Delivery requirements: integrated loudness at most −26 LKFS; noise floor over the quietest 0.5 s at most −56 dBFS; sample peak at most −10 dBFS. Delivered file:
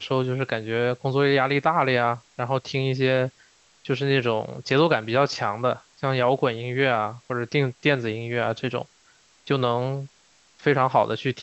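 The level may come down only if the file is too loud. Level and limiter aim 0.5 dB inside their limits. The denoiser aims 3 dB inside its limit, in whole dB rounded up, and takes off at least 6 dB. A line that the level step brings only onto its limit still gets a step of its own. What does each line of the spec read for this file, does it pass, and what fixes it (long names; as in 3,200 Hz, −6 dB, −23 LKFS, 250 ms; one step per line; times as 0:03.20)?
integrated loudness −24.0 LKFS: out of spec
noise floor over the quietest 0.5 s −59 dBFS: in spec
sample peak −5.5 dBFS: out of spec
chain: level −2.5 dB
brickwall limiter −10.5 dBFS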